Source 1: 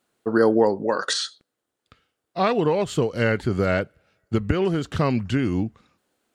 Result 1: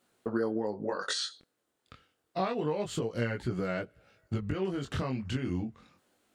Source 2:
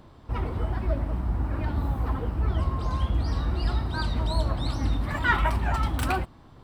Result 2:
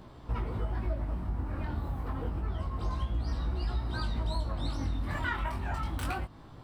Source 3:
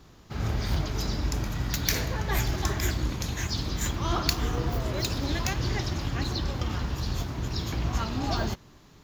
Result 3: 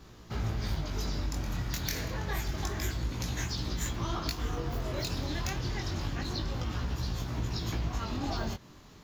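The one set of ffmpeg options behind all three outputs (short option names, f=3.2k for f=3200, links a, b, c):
-af "acompressor=threshold=-31dB:ratio=6,flanger=delay=16.5:depth=6.8:speed=0.28,volume=4dB"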